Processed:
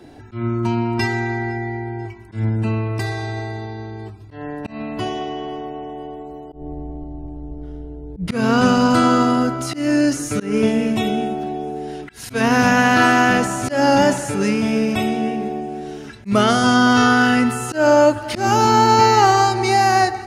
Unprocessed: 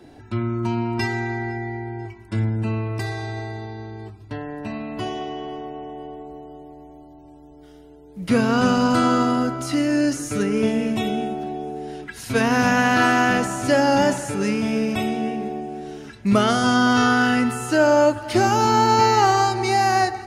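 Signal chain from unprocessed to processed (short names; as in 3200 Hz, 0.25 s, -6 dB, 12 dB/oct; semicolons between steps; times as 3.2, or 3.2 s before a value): 6.52–8.28 tilt -4.5 dB/oct; auto swell 0.149 s; gain +3.5 dB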